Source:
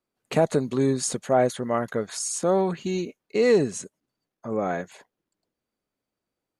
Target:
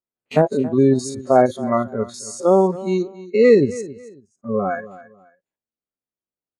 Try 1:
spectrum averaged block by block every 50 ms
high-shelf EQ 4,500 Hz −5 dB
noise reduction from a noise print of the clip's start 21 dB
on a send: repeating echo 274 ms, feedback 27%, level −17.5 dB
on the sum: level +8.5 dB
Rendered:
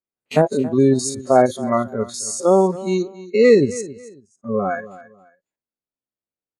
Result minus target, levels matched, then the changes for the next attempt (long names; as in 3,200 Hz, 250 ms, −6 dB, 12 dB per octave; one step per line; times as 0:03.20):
8,000 Hz band +6.5 dB
change: high-shelf EQ 4,500 Hz −14.5 dB